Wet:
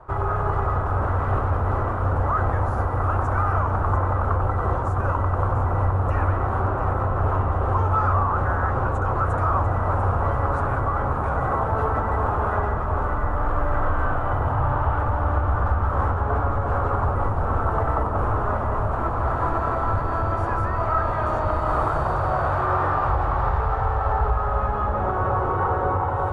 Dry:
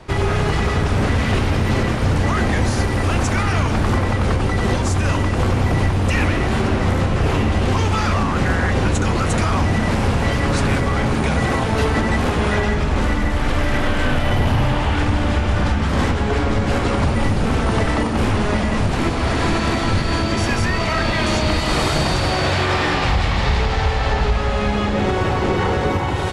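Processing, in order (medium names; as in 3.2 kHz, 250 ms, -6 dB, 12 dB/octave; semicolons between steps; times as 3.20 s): FFT filter 110 Hz 0 dB, 200 Hz -12 dB, 590 Hz +2 dB, 1.3 kHz +8 dB, 2.1 kHz -16 dB, 4.9 kHz -26 dB, 11 kHz -17 dB; echo whose repeats swap between lows and highs 347 ms, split 840 Hz, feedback 53%, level -5 dB; trim -5.5 dB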